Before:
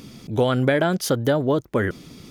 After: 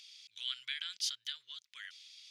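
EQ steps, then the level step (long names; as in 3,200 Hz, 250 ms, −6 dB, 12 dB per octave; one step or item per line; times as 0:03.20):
inverse Chebyshev high-pass filter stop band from 740 Hz, stop band 70 dB
head-to-tape spacing loss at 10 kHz 27 dB
+9.5 dB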